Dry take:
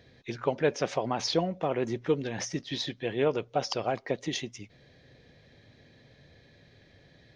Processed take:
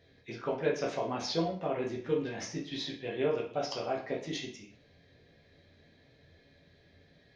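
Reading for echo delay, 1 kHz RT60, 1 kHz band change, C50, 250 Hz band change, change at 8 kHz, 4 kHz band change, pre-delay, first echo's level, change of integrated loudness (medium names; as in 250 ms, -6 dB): no echo, 0.45 s, -4.5 dB, 7.5 dB, -3.5 dB, no reading, -4.5 dB, 5 ms, no echo, -3.5 dB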